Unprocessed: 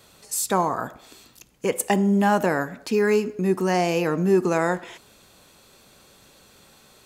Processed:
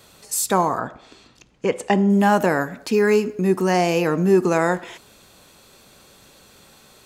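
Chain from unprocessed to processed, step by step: 0.79–2.10 s: distance through air 110 m; trim +3 dB

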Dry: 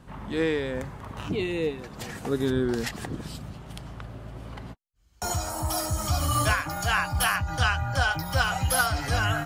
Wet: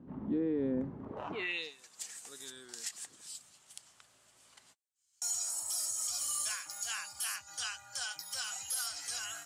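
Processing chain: band-pass sweep 270 Hz -> 7.8 kHz, 1.04–1.76 s; peak limiter -30.5 dBFS, peak gain reduction 8 dB; trim +5 dB

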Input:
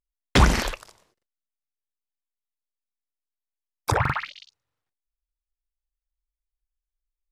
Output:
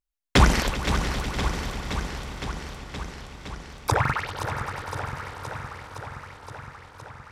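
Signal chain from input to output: echo with a slow build-up 98 ms, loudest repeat 5, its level -16 dB; modulated delay 517 ms, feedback 75%, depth 113 cents, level -9 dB

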